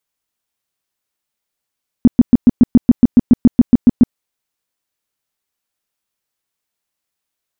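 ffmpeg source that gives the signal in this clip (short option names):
-f lavfi -i "aevalsrc='0.841*sin(2*PI*242*mod(t,0.14))*lt(mod(t,0.14),6/242)':d=2.1:s=44100"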